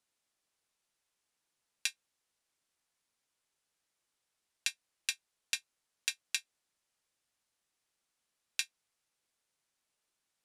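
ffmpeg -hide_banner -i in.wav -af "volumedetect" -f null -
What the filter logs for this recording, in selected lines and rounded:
mean_volume: -47.0 dB
max_volume: -11.2 dB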